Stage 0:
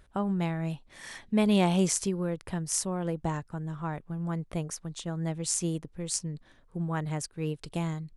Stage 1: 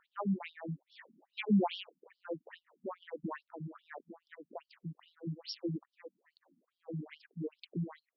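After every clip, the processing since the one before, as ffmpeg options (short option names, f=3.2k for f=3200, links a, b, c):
-af "afftfilt=real='re*between(b*sr/1024,200*pow(4100/200,0.5+0.5*sin(2*PI*2.4*pts/sr))/1.41,200*pow(4100/200,0.5+0.5*sin(2*PI*2.4*pts/sr))*1.41)':imag='im*between(b*sr/1024,200*pow(4100/200,0.5+0.5*sin(2*PI*2.4*pts/sr))/1.41,200*pow(4100/200,0.5+0.5*sin(2*PI*2.4*pts/sr))*1.41)':win_size=1024:overlap=0.75,volume=-1dB"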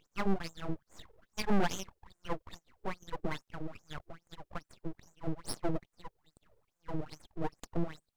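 -af "aeval=exprs='(tanh(44.7*val(0)+0.75)-tanh(0.75))/44.7':c=same,aeval=exprs='abs(val(0))':c=same,volume=10dB"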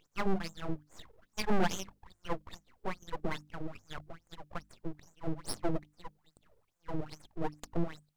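-af "bandreject=f=50:t=h:w=6,bandreject=f=100:t=h:w=6,bandreject=f=150:t=h:w=6,bandreject=f=200:t=h:w=6,bandreject=f=250:t=h:w=6,bandreject=f=300:t=h:w=6,volume=1dB"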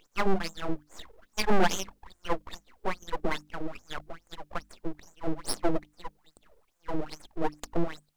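-af "equalizer=f=120:w=1.6:g=-14,volume=7dB"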